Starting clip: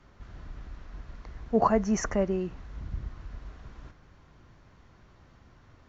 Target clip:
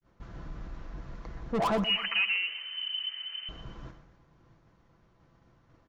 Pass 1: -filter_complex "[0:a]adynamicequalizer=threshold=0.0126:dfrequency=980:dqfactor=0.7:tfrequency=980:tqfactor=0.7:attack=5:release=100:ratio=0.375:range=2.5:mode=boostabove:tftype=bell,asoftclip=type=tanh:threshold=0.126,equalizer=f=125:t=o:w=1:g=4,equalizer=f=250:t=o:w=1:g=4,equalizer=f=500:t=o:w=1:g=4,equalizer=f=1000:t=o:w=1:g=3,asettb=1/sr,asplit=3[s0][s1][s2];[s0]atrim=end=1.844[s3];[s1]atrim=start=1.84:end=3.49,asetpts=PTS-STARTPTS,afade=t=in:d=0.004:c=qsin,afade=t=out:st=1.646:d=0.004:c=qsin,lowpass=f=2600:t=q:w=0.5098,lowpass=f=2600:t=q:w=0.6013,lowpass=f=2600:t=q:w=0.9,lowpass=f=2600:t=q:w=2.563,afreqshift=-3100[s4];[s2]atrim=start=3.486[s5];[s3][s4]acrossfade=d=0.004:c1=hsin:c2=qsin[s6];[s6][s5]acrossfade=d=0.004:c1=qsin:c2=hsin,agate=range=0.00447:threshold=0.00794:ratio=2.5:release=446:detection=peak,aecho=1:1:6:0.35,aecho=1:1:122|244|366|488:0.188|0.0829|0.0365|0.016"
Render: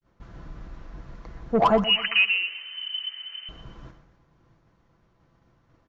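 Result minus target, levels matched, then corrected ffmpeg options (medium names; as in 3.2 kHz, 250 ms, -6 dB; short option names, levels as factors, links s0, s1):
saturation: distortion -8 dB
-filter_complex "[0:a]adynamicequalizer=threshold=0.0126:dfrequency=980:dqfactor=0.7:tfrequency=980:tqfactor=0.7:attack=5:release=100:ratio=0.375:range=2.5:mode=boostabove:tftype=bell,asoftclip=type=tanh:threshold=0.0316,equalizer=f=125:t=o:w=1:g=4,equalizer=f=250:t=o:w=1:g=4,equalizer=f=500:t=o:w=1:g=4,equalizer=f=1000:t=o:w=1:g=3,asettb=1/sr,asplit=3[s0][s1][s2];[s0]atrim=end=1.844[s3];[s1]atrim=start=1.84:end=3.49,asetpts=PTS-STARTPTS,afade=t=in:d=0.004:c=qsin,afade=t=out:st=1.646:d=0.004:c=qsin,lowpass=f=2600:t=q:w=0.5098,lowpass=f=2600:t=q:w=0.6013,lowpass=f=2600:t=q:w=0.9,lowpass=f=2600:t=q:w=2.563,afreqshift=-3100[s4];[s2]atrim=start=3.486[s5];[s3][s4]acrossfade=d=0.004:c1=hsin:c2=qsin[s6];[s6][s5]acrossfade=d=0.004:c1=qsin:c2=hsin,agate=range=0.00447:threshold=0.00794:ratio=2.5:release=446:detection=peak,aecho=1:1:6:0.35,aecho=1:1:122|244|366|488:0.188|0.0829|0.0365|0.016"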